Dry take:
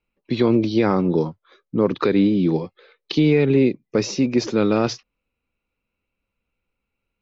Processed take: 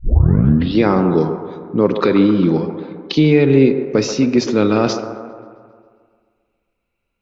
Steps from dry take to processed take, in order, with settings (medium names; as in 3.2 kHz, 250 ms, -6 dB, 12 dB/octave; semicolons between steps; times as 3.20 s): tape start-up on the opening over 0.80 s; on a send: feedback echo behind a band-pass 134 ms, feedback 59%, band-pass 740 Hz, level -8 dB; on the sum: plate-style reverb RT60 1.9 s, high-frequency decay 0.35×, DRR 11 dB; trim +4 dB